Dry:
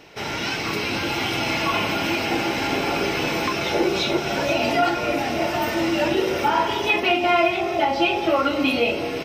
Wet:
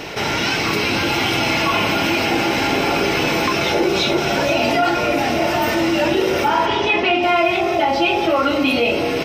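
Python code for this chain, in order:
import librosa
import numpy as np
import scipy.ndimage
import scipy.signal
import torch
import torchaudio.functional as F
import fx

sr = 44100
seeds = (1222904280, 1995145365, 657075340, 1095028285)

y = fx.lowpass(x, sr, hz=4800.0, slope=12, at=(6.66, 7.23))
y = fx.env_flatten(y, sr, amount_pct=50)
y = y * librosa.db_to_amplitude(1.5)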